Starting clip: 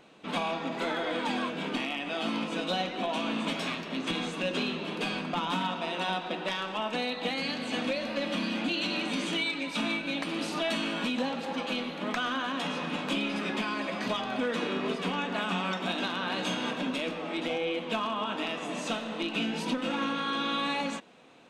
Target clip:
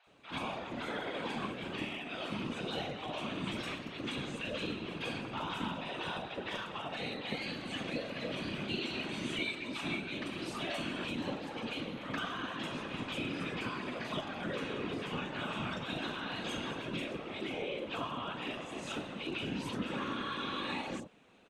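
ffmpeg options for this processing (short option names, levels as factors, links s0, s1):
-filter_complex "[0:a]afftfilt=real='hypot(re,im)*cos(2*PI*random(0))':imag='hypot(re,im)*sin(2*PI*random(1))':win_size=512:overlap=0.75,acrossover=split=770|5200[s0][s1][s2];[s2]adelay=40[s3];[s0]adelay=70[s4];[s4][s1][s3]amix=inputs=3:normalize=0"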